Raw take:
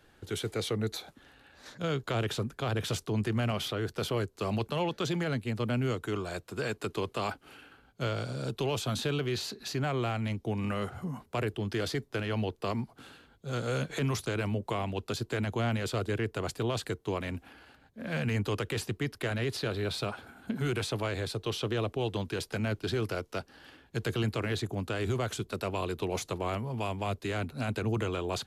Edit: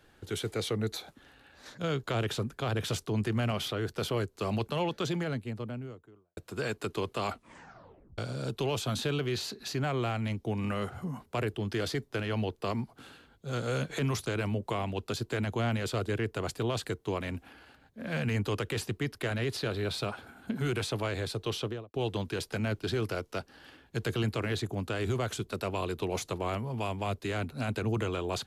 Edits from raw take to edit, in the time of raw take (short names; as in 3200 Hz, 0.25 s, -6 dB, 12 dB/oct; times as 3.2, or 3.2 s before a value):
4.91–6.37 studio fade out
7.26 tape stop 0.92 s
21.56–21.94 studio fade out